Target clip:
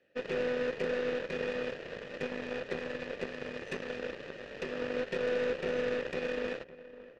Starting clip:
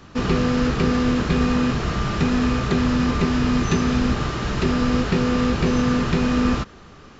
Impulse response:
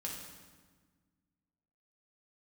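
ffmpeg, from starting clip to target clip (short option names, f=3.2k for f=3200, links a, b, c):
-filter_complex "[0:a]asplit=3[a][b][c];[a]bandpass=f=530:t=q:w=8,volume=0dB[d];[b]bandpass=f=1.84k:t=q:w=8,volume=-6dB[e];[c]bandpass=f=2.48k:t=q:w=8,volume=-9dB[f];[d][e][f]amix=inputs=3:normalize=0,asplit=2[g][h];[h]adelay=558,lowpass=f=1.6k:p=1,volume=-8.5dB,asplit=2[i][j];[j]adelay=558,lowpass=f=1.6k:p=1,volume=0.42,asplit=2[k][l];[l]adelay=558,lowpass=f=1.6k:p=1,volume=0.42,asplit=2[m][n];[n]adelay=558,lowpass=f=1.6k:p=1,volume=0.42,asplit=2[o][p];[p]adelay=558,lowpass=f=1.6k:p=1,volume=0.42[q];[g][i][k][m][o][q]amix=inputs=6:normalize=0,aeval=exprs='0.0794*(cos(1*acos(clip(val(0)/0.0794,-1,1)))-cos(1*PI/2))+0.01*(cos(2*acos(clip(val(0)/0.0794,-1,1)))-cos(2*PI/2))+0.00631*(cos(4*acos(clip(val(0)/0.0794,-1,1)))-cos(4*PI/2))+0.00794*(cos(7*acos(clip(val(0)/0.0794,-1,1)))-cos(7*PI/2))':c=same"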